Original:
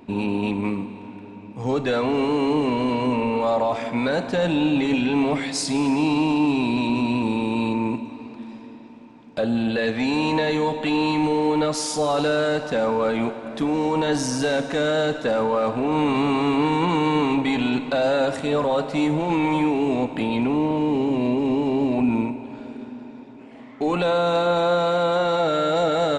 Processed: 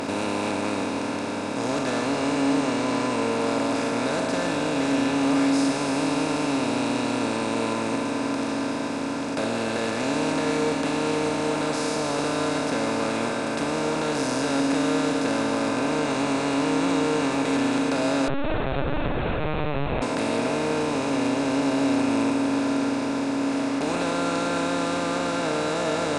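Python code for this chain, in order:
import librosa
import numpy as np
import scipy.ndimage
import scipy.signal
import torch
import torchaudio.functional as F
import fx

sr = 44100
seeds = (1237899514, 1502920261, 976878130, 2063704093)

y = fx.bin_compress(x, sr, power=0.2)
y = fx.comb_fb(y, sr, f0_hz=92.0, decay_s=1.5, harmonics='odd', damping=0.0, mix_pct=80)
y = fx.lpc_vocoder(y, sr, seeds[0], excitation='pitch_kept', order=10, at=(18.28, 20.02))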